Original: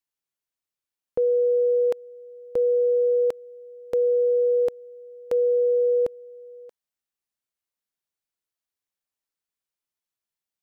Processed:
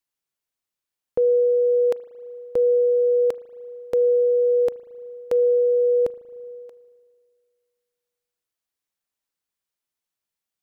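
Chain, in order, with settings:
spring reverb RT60 2 s, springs 37 ms, chirp 20 ms, DRR 17 dB
level +2.5 dB

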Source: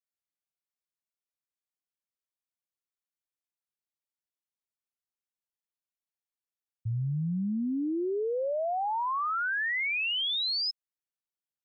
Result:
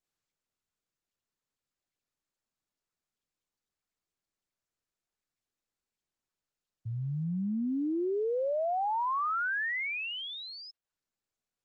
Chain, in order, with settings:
Bessel high-pass filter 150 Hz, order 2
treble cut that deepens with the level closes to 2,000 Hz, closed at −28.5 dBFS
Opus 16 kbit/s 48,000 Hz

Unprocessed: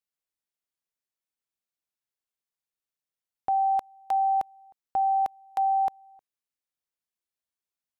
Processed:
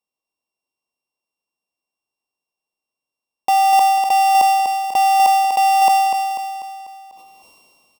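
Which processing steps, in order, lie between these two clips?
samples sorted by size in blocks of 16 samples
drawn EQ curve 100 Hz 0 dB, 240 Hz +9 dB, 510 Hz +10 dB, 1,100 Hz +13 dB, 1,600 Hz −19 dB, 2,300 Hz +2 dB
repeating echo 246 ms, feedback 40%, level −8 dB
on a send at −22.5 dB: convolution reverb RT60 0.55 s, pre-delay 47 ms
on the sum: level that may fall only so fast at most 24 dB per second

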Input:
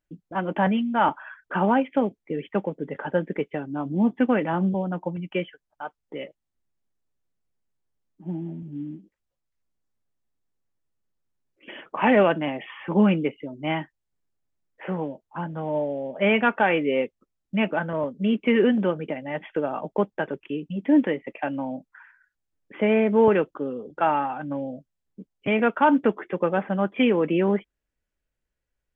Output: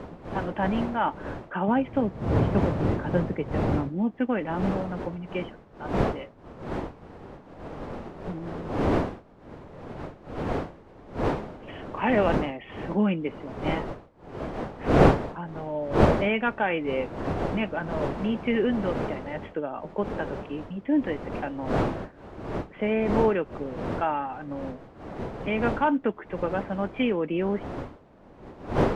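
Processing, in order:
wind on the microphone 560 Hz −26 dBFS
0:01.68–0:03.89: parametric band 110 Hz +10 dB 1.9 octaves
level −5 dB

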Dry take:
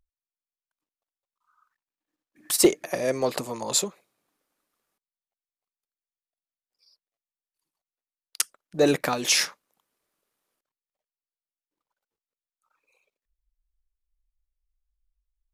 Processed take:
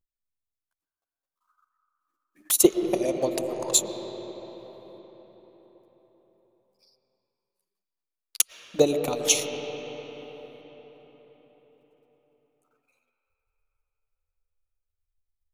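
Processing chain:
high-shelf EQ 7,900 Hz +7 dB
transient designer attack +9 dB, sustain −7 dB
flanger swept by the level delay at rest 11.5 ms, full sweep at −18.5 dBFS
on a send: high-frequency loss of the air 290 metres + convolution reverb RT60 4.8 s, pre-delay 75 ms, DRR 4.5 dB
on the sum: level −5 dB

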